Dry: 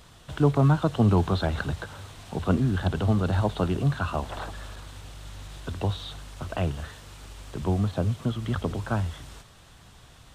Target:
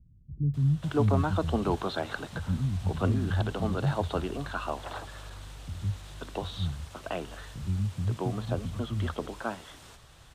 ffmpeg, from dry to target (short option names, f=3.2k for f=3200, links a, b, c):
-filter_complex "[0:a]acrossover=split=210[a][b];[b]adelay=540[c];[a][c]amix=inputs=2:normalize=0,volume=-2.5dB"